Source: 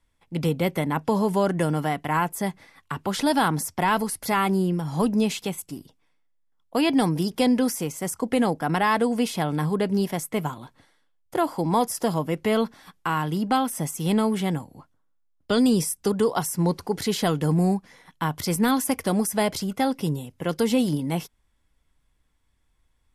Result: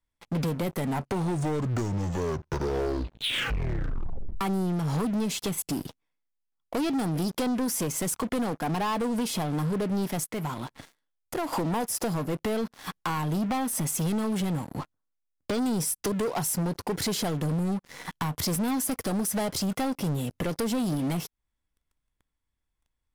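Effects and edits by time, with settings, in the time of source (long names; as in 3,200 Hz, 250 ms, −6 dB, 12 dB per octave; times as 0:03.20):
0:00.62: tape stop 3.79 s
0:10.24–0:11.53: downward compressor 2 to 1, threshold −51 dBFS
whole clip: dynamic equaliser 2,200 Hz, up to −6 dB, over −38 dBFS, Q 0.8; downward compressor 6 to 1, threshold −36 dBFS; leveller curve on the samples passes 5; level −3.5 dB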